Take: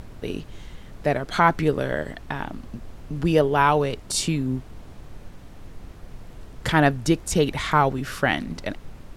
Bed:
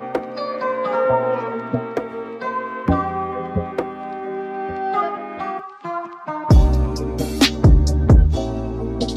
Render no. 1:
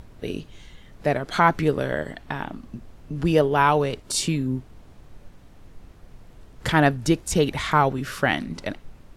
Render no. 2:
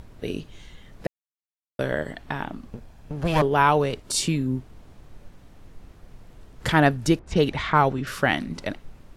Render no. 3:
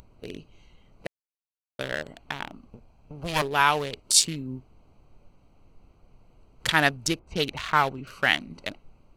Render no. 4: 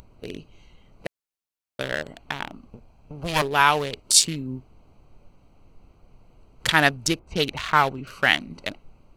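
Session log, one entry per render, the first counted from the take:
noise print and reduce 6 dB
1.07–1.79 s: mute; 2.69–3.42 s: comb filter that takes the minimum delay 1.2 ms; 7.19–8.07 s: level-controlled noise filter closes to 1.4 kHz, open at -14.5 dBFS
local Wiener filter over 25 samples; tilt shelf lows -10 dB, about 1.3 kHz
trim +3 dB; peak limiter -1 dBFS, peak gain reduction 1 dB

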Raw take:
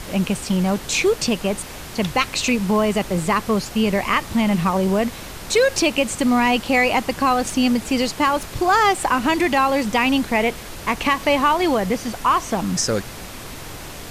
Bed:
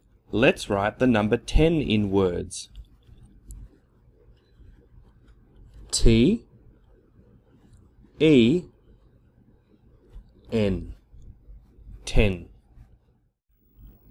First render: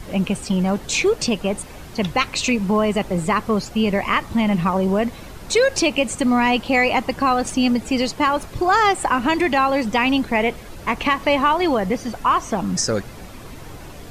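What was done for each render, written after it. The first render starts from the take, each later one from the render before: noise reduction 9 dB, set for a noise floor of -35 dBFS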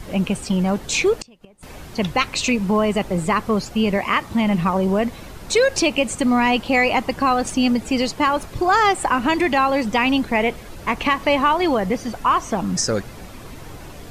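1.13–1.63 s: inverted gate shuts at -16 dBFS, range -29 dB; 3.97–4.43 s: high-pass 140 Hz -> 57 Hz 6 dB/octave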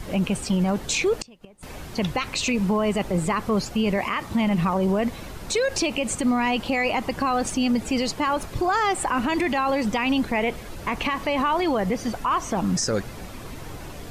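peak limiter -15 dBFS, peak gain reduction 9.5 dB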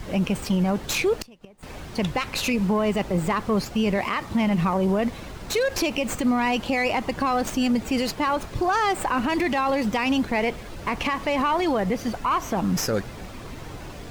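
sliding maximum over 3 samples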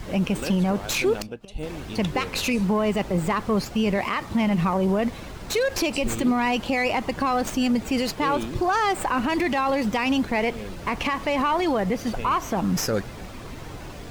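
add bed -14 dB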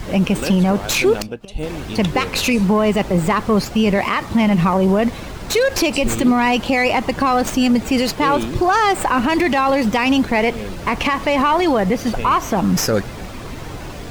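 trim +7 dB

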